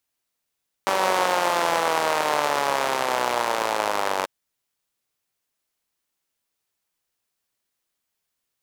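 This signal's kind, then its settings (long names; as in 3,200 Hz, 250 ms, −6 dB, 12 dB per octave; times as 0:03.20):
pulse-train model of a four-cylinder engine, changing speed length 3.39 s, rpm 5,800, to 2,800, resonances 600/860 Hz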